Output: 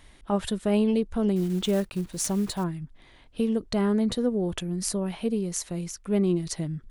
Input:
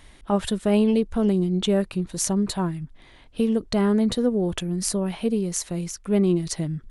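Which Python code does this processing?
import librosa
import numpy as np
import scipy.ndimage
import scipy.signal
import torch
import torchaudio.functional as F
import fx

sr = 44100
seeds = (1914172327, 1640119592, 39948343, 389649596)

y = fx.block_float(x, sr, bits=5, at=(1.36, 2.65))
y = y * librosa.db_to_amplitude(-3.5)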